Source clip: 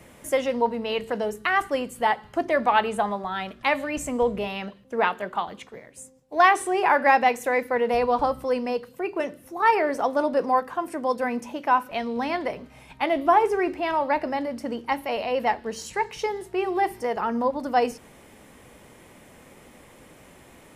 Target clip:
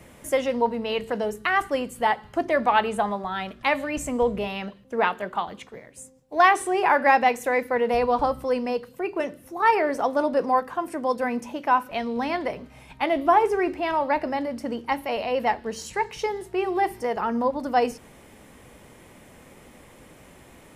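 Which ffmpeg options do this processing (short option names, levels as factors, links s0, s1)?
-af "lowshelf=f=140:g=3.5"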